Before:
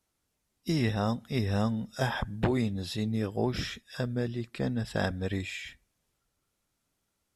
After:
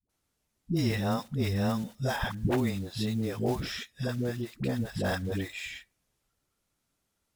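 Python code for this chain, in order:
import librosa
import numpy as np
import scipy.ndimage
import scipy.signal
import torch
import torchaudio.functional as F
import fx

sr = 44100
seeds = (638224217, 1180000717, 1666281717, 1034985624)

y = fx.block_float(x, sr, bits=5)
y = fx.dispersion(y, sr, late='highs', ms=95.0, hz=400.0)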